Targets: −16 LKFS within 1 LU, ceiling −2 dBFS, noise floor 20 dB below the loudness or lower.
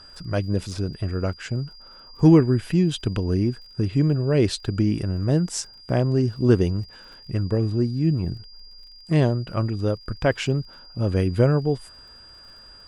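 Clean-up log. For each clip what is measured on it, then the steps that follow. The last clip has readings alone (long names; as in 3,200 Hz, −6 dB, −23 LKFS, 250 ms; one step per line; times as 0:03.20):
crackle rate 44 per second; interfering tone 4,800 Hz; level of the tone −45 dBFS; integrated loudness −23.0 LKFS; sample peak −4.0 dBFS; target loudness −16.0 LKFS
→ click removal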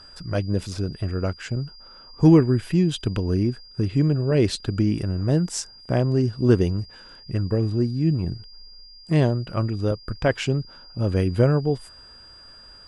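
crackle rate 0.16 per second; interfering tone 4,800 Hz; level of the tone −45 dBFS
→ notch filter 4,800 Hz, Q 30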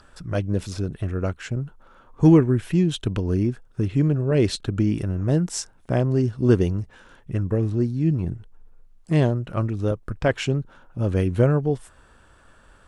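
interfering tone none found; integrated loudness −23.0 LKFS; sample peak −4.0 dBFS; target loudness −16.0 LKFS
→ level +7 dB
brickwall limiter −2 dBFS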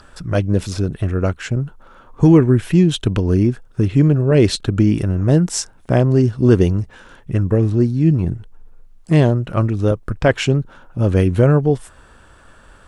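integrated loudness −16.5 LKFS; sample peak −2.0 dBFS; background noise floor −47 dBFS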